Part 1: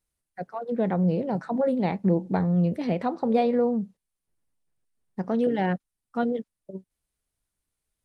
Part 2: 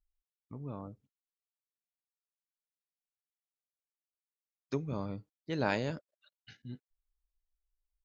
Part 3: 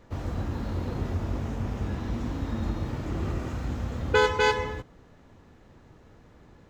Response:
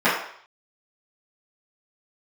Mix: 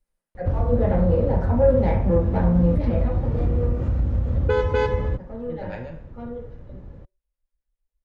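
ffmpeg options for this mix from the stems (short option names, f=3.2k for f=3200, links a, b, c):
-filter_complex "[0:a]asoftclip=type=tanh:threshold=-18.5dB,volume=-7dB,afade=t=out:st=2.71:d=0.53:silence=0.223872,asplit=2[a][b];[b]volume=-14dB[c];[1:a]acrossover=split=500[d][e];[d]aeval=exprs='val(0)*(1-1/2+1/2*cos(2*PI*7.4*n/s))':c=same[f];[e]aeval=exprs='val(0)*(1-1/2-1/2*cos(2*PI*7.4*n/s))':c=same[g];[f][g]amix=inputs=2:normalize=0,volume=-6.5dB,asplit=2[h][i];[i]volume=-21dB[j];[2:a]adelay=350,volume=0dB[k];[h][k]amix=inputs=2:normalize=0,aemphasis=mode=reproduction:type=riaa,acompressor=threshold=-18dB:ratio=6,volume=0dB[l];[3:a]atrim=start_sample=2205[m];[c][j]amix=inputs=2:normalize=0[n];[n][m]afir=irnorm=-1:irlink=0[o];[a][l][o]amix=inputs=3:normalize=0,equalizer=f=540:t=o:w=0.32:g=9.5"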